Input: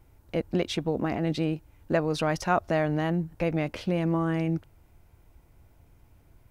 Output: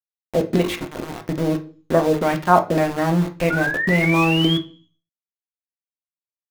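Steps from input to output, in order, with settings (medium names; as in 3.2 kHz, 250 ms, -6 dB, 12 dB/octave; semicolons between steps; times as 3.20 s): treble shelf 2 kHz -6 dB; hum notches 50/100/150/200/250/300/350/400 Hz; 0.62–1.29 s: compressor with a negative ratio -37 dBFS, ratio -1; LFO low-pass saw down 1.8 Hz 320–5000 Hz; small samples zeroed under -31.5 dBFS; 3.50–4.58 s: painted sound rise 1.4–3.4 kHz -30 dBFS; on a send: reverberation RT60 0.40 s, pre-delay 3 ms, DRR 4.5 dB; on the sum: trim +5.5 dB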